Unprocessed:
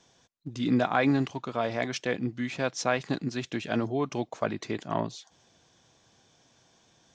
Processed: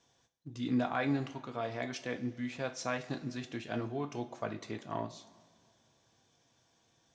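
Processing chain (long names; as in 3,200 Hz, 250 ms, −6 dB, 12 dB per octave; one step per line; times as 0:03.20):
coupled-rooms reverb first 0.29 s, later 2.1 s, from −18 dB, DRR 5.5 dB
level −9 dB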